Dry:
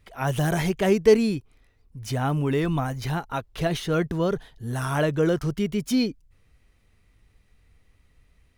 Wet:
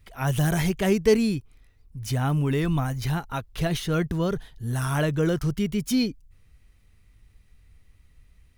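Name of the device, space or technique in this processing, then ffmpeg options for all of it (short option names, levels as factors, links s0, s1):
smiley-face EQ: -af "lowshelf=f=150:g=5.5,equalizer=f=530:t=o:w=2.2:g=-4,highshelf=f=9100:g=5.5"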